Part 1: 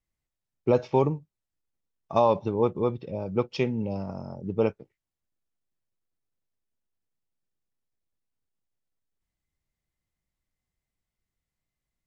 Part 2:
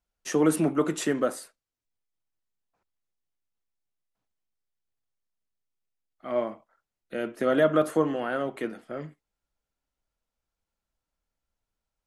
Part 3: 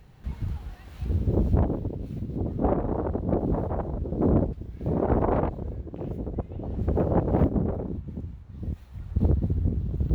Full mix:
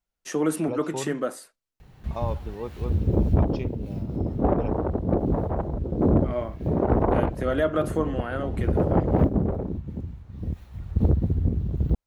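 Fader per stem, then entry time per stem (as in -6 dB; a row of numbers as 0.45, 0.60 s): -10.5, -2.0, +2.0 dB; 0.00, 0.00, 1.80 s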